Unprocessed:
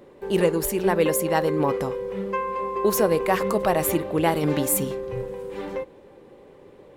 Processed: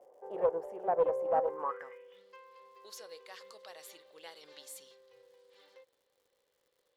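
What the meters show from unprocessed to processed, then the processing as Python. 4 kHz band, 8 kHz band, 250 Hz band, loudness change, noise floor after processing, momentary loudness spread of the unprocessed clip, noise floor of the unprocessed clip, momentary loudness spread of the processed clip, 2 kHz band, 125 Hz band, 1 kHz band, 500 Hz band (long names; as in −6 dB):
−16.5 dB, −24.5 dB, −28.0 dB, −9.0 dB, −78 dBFS, 11 LU, −50 dBFS, 21 LU, −21.0 dB, below −30 dB, −11.0 dB, −12.5 dB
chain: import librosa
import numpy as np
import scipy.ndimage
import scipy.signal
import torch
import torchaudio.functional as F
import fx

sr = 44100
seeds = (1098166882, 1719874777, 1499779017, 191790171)

y = fx.peak_eq(x, sr, hz=140.0, db=-6.5, octaves=2.4)
y = fx.filter_sweep_bandpass(y, sr, from_hz=720.0, to_hz=4100.0, start_s=1.45, end_s=2.22, q=7.0)
y = fx.dmg_crackle(y, sr, seeds[0], per_s=180.0, level_db=-61.0)
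y = fx.graphic_eq_31(y, sr, hz=(500, 2500, 4000), db=(11, -6, -11))
y = fx.doppler_dist(y, sr, depth_ms=0.16)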